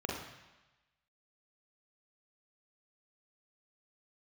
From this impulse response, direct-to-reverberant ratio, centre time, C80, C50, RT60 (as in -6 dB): -3.0 dB, 57 ms, 5.5 dB, 2.0 dB, 1.1 s